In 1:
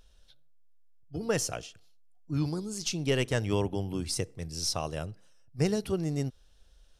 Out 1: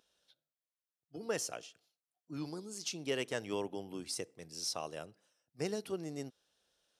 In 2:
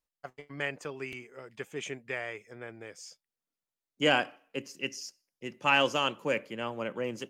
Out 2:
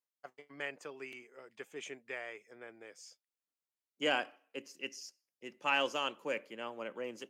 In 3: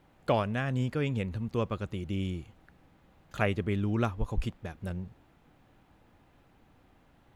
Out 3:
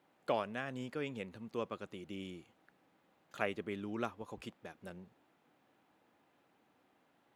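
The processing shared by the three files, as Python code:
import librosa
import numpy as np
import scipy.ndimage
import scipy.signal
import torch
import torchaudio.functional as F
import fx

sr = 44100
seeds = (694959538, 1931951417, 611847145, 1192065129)

y = scipy.signal.sosfilt(scipy.signal.butter(2, 260.0, 'highpass', fs=sr, output='sos'), x)
y = y * 10.0 ** (-6.5 / 20.0)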